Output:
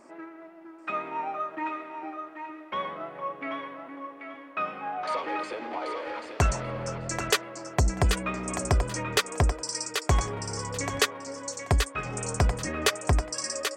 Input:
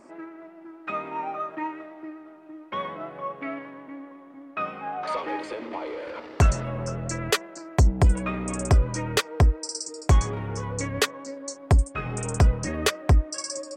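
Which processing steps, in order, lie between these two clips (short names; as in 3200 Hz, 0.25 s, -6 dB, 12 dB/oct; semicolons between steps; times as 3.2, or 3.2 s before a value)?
low shelf 360 Hz -6 dB; thinning echo 0.785 s, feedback 21%, high-pass 520 Hz, level -5.5 dB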